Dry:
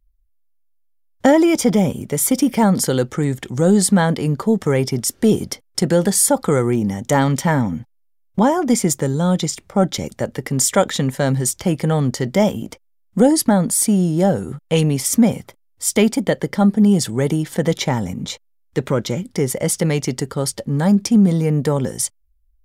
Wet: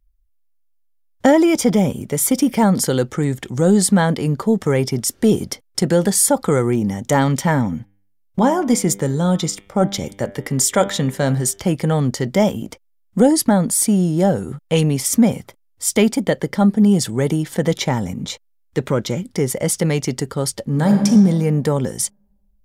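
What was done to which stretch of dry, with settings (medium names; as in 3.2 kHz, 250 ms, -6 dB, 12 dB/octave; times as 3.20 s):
7.76–11.60 s: de-hum 98.95 Hz, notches 37
20.63–21.06 s: reverb throw, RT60 1.5 s, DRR 3.5 dB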